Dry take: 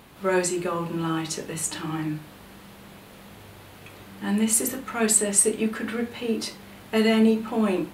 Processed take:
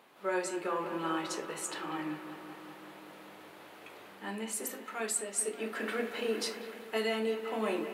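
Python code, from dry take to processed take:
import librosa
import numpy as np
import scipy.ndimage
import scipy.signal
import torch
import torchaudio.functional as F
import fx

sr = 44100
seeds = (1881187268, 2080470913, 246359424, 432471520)

y = scipy.signal.sosfilt(scipy.signal.butter(2, 400.0, 'highpass', fs=sr, output='sos'), x)
y = fx.echo_bbd(y, sr, ms=192, stages=4096, feedback_pct=78, wet_db=-12)
y = fx.rider(y, sr, range_db=5, speed_s=0.5)
y = fx.high_shelf(y, sr, hz=3600.0, db=fx.steps((0.0, -8.0), (4.63, -2.0)))
y = F.gain(torch.from_numpy(y), -7.5).numpy()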